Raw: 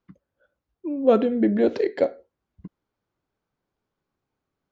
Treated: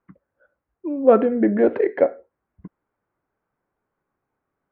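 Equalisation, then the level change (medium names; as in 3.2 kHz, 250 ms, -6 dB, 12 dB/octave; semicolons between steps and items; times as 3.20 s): low-pass 2 kHz 24 dB/octave; bass shelf 370 Hz -7.5 dB; +6.5 dB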